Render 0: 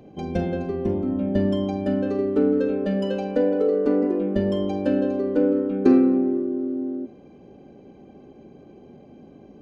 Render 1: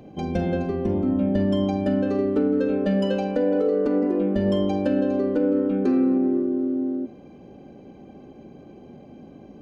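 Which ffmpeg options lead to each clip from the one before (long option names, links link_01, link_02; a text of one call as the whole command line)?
ffmpeg -i in.wav -af "equalizer=frequency=410:width=3.9:gain=-3.5,alimiter=limit=-16dB:level=0:latency=1:release=108,volume=3dB" out.wav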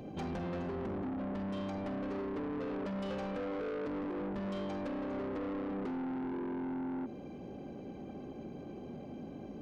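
ffmpeg -i in.wav -af "acompressor=threshold=-27dB:ratio=6,asoftclip=type=tanh:threshold=-35.5dB" out.wav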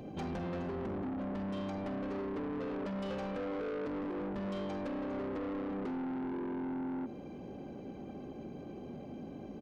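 ffmpeg -i in.wav -af "aecho=1:1:1026:0.0668" out.wav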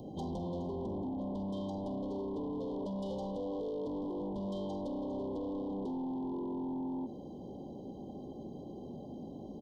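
ffmpeg -i in.wav -af "asuperstop=centerf=1800:order=20:qfactor=0.88" out.wav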